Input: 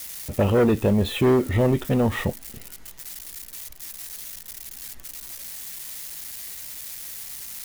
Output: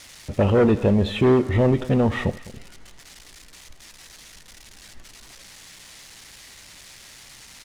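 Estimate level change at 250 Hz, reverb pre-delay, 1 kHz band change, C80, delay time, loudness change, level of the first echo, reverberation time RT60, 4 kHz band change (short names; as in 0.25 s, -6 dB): +1.5 dB, none, +1.0 dB, none, 79 ms, +5.5 dB, -19.0 dB, none, -0.5 dB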